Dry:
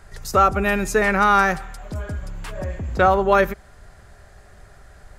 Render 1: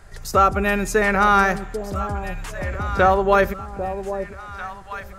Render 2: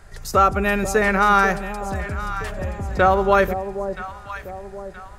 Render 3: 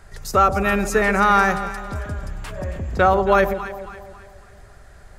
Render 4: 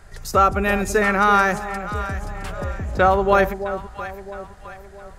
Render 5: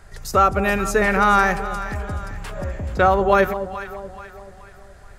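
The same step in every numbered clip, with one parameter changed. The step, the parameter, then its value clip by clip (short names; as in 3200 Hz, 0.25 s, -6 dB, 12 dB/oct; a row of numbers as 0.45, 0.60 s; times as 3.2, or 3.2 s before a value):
echo with dull and thin repeats by turns, time: 0.795, 0.487, 0.137, 0.332, 0.214 s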